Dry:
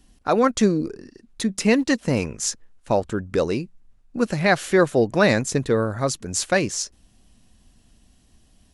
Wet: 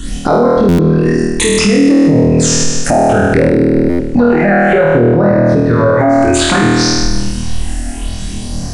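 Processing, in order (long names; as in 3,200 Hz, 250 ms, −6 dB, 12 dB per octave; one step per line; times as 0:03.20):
treble cut that deepens with the level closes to 1,400 Hz, closed at −18.5 dBFS
all-pass phaser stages 8, 0.61 Hz, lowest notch 130–3,200 Hz
downward compressor 3 to 1, threshold −40 dBFS, peak gain reduction 20 dB
downsampling to 22,050 Hz
flutter between parallel walls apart 4.3 metres, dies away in 1.3 s
boost into a limiter +33 dB
buffer that repeats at 0:00.68/0:03.89, samples 512, times 8
level −1 dB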